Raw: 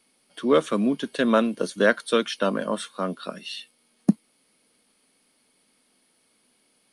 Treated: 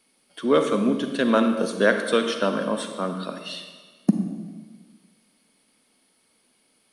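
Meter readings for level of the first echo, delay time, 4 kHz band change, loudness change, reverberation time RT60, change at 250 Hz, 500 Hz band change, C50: no echo audible, no echo audible, +1.0 dB, +1.0 dB, 1.5 s, +1.5 dB, +1.0 dB, 6.5 dB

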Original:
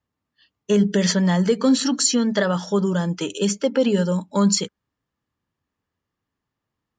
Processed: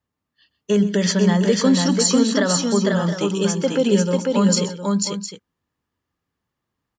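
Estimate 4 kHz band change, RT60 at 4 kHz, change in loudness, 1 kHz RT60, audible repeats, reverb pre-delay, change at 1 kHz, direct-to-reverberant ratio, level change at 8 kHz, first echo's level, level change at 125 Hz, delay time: +2.0 dB, no reverb audible, +1.5 dB, no reverb audible, 3, no reverb audible, +2.0 dB, no reverb audible, +2.0 dB, −16.0 dB, +2.0 dB, 128 ms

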